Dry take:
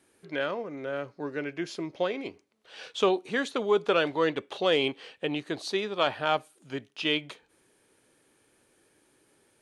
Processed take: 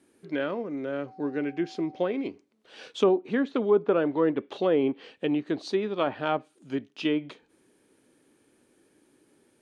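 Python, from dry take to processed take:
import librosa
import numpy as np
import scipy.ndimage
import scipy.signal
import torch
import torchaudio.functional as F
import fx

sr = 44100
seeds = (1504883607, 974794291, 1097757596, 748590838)

y = fx.dmg_tone(x, sr, hz=760.0, level_db=-47.0, at=(1.06, 2.1), fade=0.02)
y = fx.peak_eq(y, sr, hz=260.0, db=10.0, octaves=1.4)
y = fx.env_lowpass_down(y, sr, base_hz=1400.0, full_db=-17.5)
y = F.gain(torch.from_numpy(y), -2.5).numpy()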